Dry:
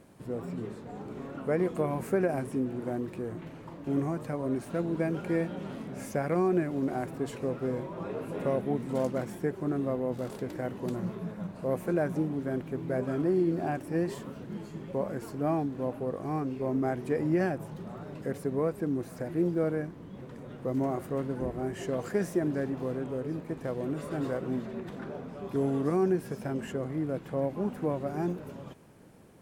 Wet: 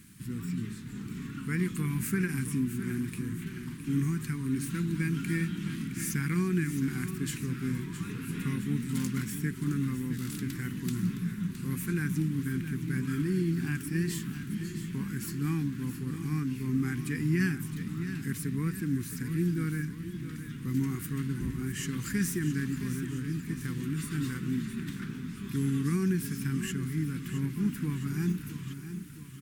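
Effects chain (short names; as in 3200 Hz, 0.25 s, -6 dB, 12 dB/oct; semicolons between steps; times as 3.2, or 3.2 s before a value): Chebyshev band-stop 210–1800 Hz, order 2; high shelf 6200 Hz +11 dB; feedback echo 0.665 s, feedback 54%, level -11 dB; gain +5 dB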